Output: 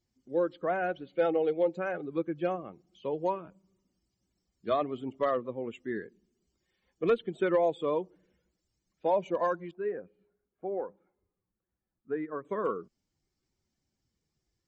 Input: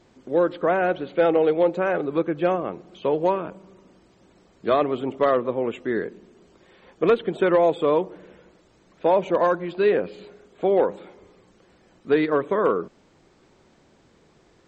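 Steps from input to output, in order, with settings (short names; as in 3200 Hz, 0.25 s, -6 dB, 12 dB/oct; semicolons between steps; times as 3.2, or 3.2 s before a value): per-bin expansion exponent 1.5; 9.71–12.45 ladder low-pass 1800 Hz, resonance 30%; gain -6 dB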